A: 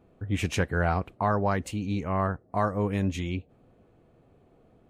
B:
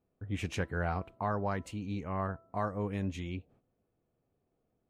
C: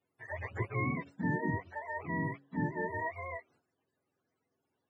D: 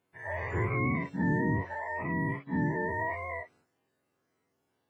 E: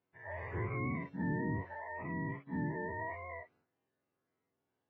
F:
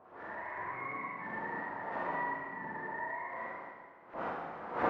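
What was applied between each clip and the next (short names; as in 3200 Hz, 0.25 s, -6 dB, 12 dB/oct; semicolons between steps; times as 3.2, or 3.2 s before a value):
de-hum 331.3 Hz, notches 4; gate -54 dBFS, range -12 dB; high shelf 8300 Hz -5.5 dB; gain -7.5 dB
spectrum mirrored in octaves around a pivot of 430 Hz
spectral dilation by 0.12 s
air absorption 200 m; gain -7 dB
wind noise 460 Hz -36 dBFS; LFO band-pass saw up 8.7 Hz 810–1900 Hz; Schroeder reverb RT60 1.7 s, combs from 32 ms, DRR -6.5 dB; gain +1.5 dB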